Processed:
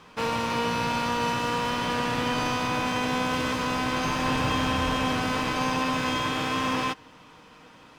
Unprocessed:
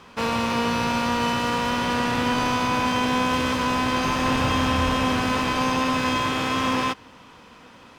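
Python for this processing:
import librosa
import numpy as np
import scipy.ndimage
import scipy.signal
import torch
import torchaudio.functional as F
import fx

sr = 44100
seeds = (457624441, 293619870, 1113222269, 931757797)

y = x + 0.33 * np.pad(x, (int(6.5 * sr / 1000.0), 0))[:len(x)]
y = y * librosa.db_to_amplitude(-3.5)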